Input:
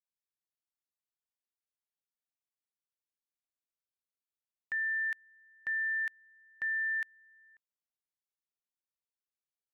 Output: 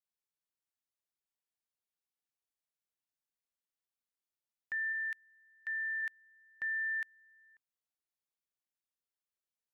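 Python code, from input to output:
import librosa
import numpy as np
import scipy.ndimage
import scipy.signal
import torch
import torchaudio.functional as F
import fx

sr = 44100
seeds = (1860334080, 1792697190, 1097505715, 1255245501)

y = fx.highpass(x, sr, hz=1400.0, slope=12, at=(4.92, 6.01), fade=0.02)
y = y * librosa.db_to_amplitude(-2.5)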